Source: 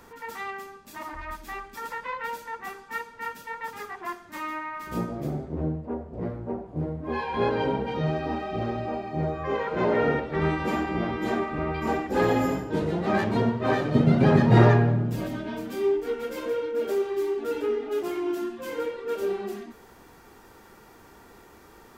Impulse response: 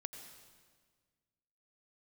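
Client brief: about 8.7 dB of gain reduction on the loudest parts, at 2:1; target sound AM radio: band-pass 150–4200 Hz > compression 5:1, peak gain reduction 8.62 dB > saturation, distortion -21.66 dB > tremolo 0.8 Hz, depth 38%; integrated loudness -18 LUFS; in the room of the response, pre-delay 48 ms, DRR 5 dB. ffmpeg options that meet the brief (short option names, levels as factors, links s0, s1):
-filter_complex "[0:a]acompressor=threshold=0.0398:ratio=2,asplit=2[s0][s1];[1:a]atrim=start_sample=2205,adelay=48[s2];[s1][s2]afir=irnorm=-1:irlink=0,volume=0.794[s3];[s0][s3]amix=inputs=2:normalize=0,highpass=150,lowpass=4200,acompressor=threshold=0.0316:ratio=5,asoftclip=threshold=0.0531,tremolo=f=0.8:d=0.38,volume=9.44"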